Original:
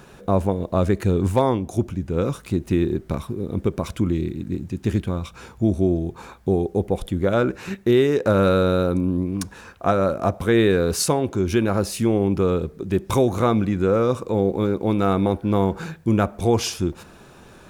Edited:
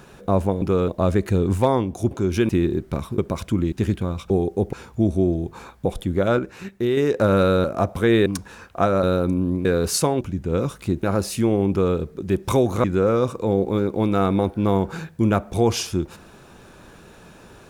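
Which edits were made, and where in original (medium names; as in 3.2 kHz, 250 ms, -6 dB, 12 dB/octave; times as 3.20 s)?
1.85–2.67 s: swap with 11.27–11.65 s
3.36–3.66 s: delete
4.20–4.78 s: delete
6.48–6.91 s: move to 5.36 s
7.45–8.03 s: gain -5 dB
8.70–9.32 s: swap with 10.09–10.71 s
12.32–12.58 s: copy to 0.62 s
13.46–13.71 s: delete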